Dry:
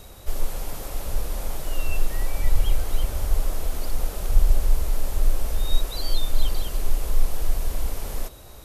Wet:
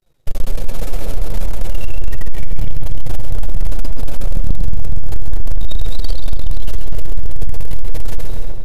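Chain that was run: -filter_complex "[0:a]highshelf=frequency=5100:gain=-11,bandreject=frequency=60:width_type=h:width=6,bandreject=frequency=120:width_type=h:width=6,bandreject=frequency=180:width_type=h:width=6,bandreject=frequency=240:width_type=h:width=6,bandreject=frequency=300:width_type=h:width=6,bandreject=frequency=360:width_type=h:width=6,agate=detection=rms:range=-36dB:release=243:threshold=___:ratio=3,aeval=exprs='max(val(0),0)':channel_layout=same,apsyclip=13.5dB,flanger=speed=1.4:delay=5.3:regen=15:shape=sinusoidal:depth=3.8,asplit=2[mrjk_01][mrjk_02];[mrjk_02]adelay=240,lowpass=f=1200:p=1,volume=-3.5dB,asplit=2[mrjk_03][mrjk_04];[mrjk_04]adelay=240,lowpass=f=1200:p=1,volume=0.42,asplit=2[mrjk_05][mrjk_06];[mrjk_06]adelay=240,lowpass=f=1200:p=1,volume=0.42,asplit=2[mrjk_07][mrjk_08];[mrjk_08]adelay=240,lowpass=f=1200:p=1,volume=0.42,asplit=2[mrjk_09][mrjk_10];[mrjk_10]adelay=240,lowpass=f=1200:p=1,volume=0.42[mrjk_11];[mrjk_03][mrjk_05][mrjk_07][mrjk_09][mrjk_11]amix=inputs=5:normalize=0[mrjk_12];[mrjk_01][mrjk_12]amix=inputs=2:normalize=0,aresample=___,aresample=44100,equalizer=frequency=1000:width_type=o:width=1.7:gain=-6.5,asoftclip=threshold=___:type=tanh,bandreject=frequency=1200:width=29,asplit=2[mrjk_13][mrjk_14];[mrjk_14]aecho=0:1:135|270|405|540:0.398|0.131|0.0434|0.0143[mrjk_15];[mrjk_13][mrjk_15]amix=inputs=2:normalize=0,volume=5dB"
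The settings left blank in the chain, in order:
-33dB, 32000, -10dB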